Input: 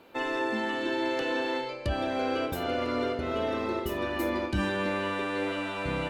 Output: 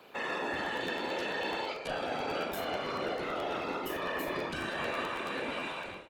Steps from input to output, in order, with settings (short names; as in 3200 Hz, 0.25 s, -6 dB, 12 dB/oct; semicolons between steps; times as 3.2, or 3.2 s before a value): ending faded out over 0.62 s; HPF 590 Hz 6 dB/oct; limiter -28.5 dBFS, peak gain reduction 7 dB; whisperiser; doubler 39 ms -7.5 dB; crackling interface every 0.11 s, samples 512, repeat, from 0.42; gain +1.5 dB